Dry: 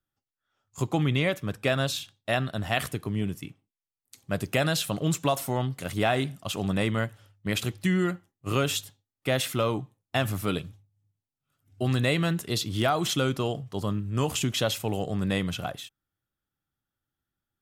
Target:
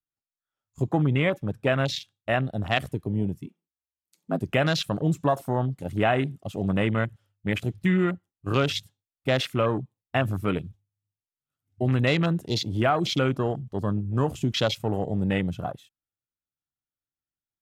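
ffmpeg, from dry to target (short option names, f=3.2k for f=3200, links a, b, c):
-filter_complex "[0:a]asplit=3[a][b][c];[a]afade=t=out:st=3.46:d=0.02[d];[b]afreqshift=67,afade=t=in:st=3.46:d=0.02,afade=t=out:st=4.39:d=0.02[e];[c]afade=t=in:st=4.39:d=0.02[f];[d][e][f]amix=inputs=3:normalize=0,afwtdn=0.0224,volume=2.5dB"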